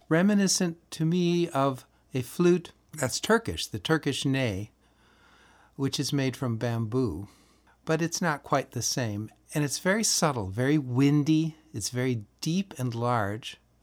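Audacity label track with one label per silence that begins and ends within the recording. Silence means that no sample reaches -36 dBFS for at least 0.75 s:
4.650000	5.790000	silence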